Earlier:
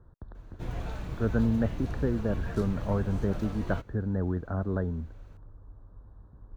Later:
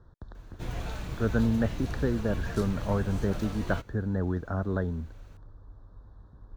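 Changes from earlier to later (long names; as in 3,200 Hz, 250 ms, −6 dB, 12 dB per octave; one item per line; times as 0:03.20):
speech: remove high-frequency loss of the air 190 metres
master: add high-shelf EQ 2,200 Hz +8 dB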